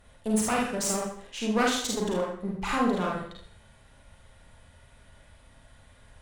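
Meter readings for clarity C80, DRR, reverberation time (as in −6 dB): 7.0 dB, −2.5 dB, 0.55 s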